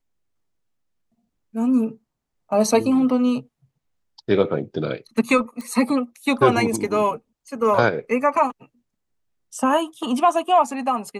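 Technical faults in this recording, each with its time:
5.61 pop

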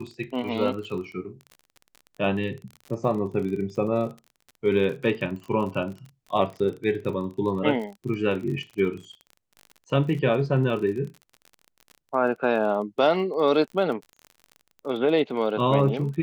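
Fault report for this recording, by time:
crackle 34/s -34 dBFS

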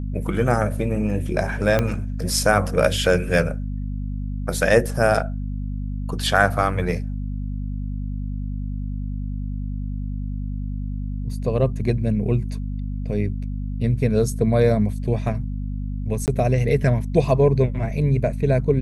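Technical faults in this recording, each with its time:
hum 50 Hz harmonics 5 -27 dBFS
1.79 pop -7 dBFS
11.33 gap 2.1 ms
16.26–16.28 gap 18 ms

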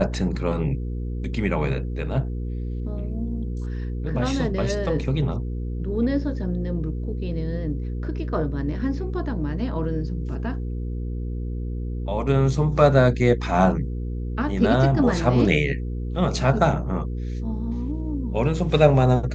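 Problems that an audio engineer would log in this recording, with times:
hum 60 Hz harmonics 8 -28 dBFS

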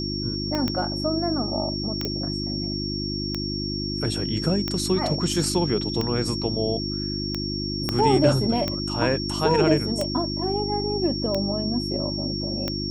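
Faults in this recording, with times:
hum 50 Hz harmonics 7 -30 dBFS
tick 45 rpm -12 dBFS
tone 5500 Hz -30 dBFS
0.55 pop -13 dBFS
2.05 pop -13 dBFS
7.89 pop -9 dBFS

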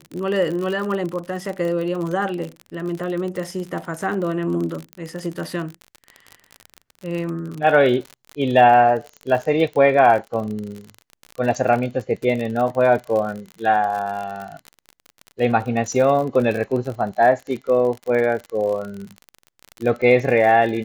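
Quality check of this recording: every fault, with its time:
crackle 46/s -26 dBFS
4.93 pop -18 dBFS

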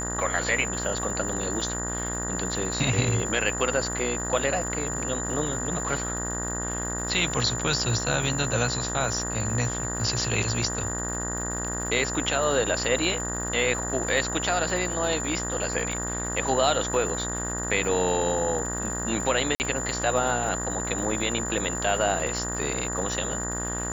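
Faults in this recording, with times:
buzz 60 Hz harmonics 32 -33 dBFS
crackle 190/s -35 dBFS
tone 7100 Hz -31 dBFS
19.55–19.6 gap 49 ms

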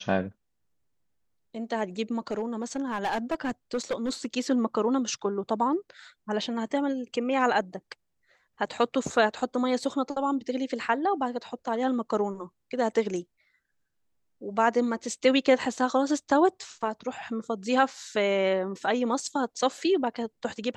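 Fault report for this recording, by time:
2.31–4.26 clipped -23.5 dBFS

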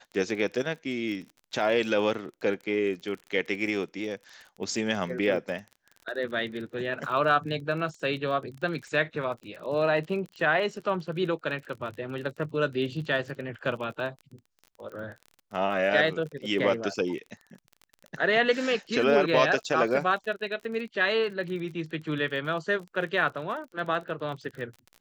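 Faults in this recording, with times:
crackle 32/s -37 dBFS

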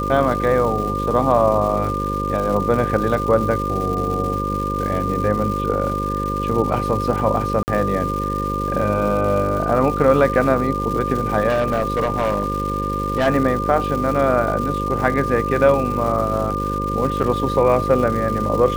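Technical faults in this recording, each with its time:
buzz 50 Hz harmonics 11 -25 dBFS
crackle 380/s -27 dBFS
tone 1200 Hz -23 dBFS
7.63–7.68 gap 49 ms
11.48–13.28 clipped -14.5 dBFS
17.23–17.24 gap 6.6 ms

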